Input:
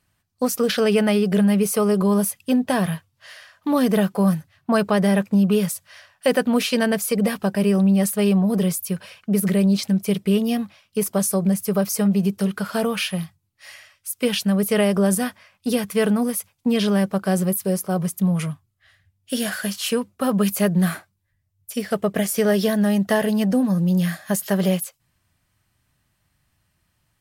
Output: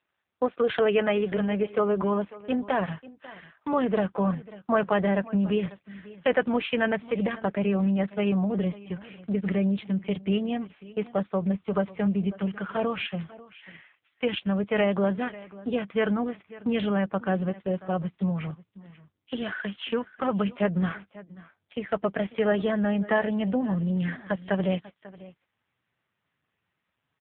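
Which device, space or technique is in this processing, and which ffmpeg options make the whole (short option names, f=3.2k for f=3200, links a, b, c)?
satellite phone: -af "asubboost=boost=7:cutoff=120,highpass=350,lowpass=3k,aecho=1:1:543:0.112" -ar 8000 -c:a libopencore_amrnb -b:a 5900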